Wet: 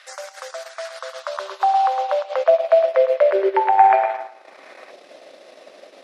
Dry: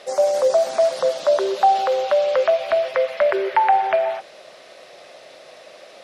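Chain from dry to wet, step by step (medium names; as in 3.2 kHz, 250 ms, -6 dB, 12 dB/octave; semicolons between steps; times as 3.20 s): feedback echo behind a low-pass 108 ms, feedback 32%, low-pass 1.9 kHz, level -5 dB; transient shaper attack +3 dB, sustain -11 dB; in parallel at 0 dB: peak limiter -11 dBFS, peak gain reduction 10 dB; on the sum: time-frequency box 3.78–4.91 s, 740–2600 Hz +8 dB; high-pass sweep 1.5 kHz -> 260 Hz, 0.83–4.49 s; trim -9.5 dB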